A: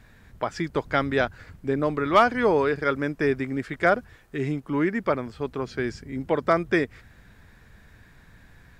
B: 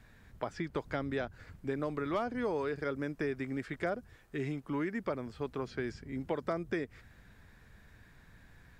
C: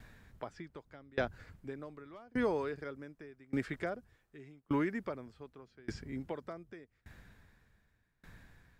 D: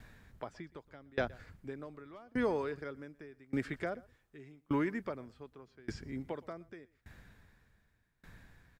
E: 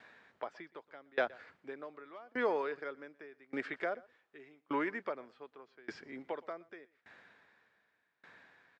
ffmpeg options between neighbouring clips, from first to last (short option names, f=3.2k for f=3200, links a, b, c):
-filter_complex "[0:a]acrossover=split=680|4500[a][b][c];[a]acompressor=threshold=-27dB:ratio=4[d];[b]acompressor=threshold=-35dB:ratio=4[e];[c]acompressor=threshold=-55dB:ratio=4[f];[d][e][f]amix=inputs=3:normalize=0,volume=-6dB"
-af "aeval=exprs='val(0)*pow(10,-28*if(lt(mod(0.85*n/s,1),2*abs(0.85)/1000),1-mod(0.85*n/s,1)/(2*abs(0.85)/1000),(mod(0.85*n/s,1)-2*abs(0.85)/1000)/(1-2*abs(0.85)/1000))/20)':c=same,volume=4.5dB"
-af "aecho=1:1:120:0.0708"
-af "highpass=460,lowpass=3.6k,volume=3.5dB"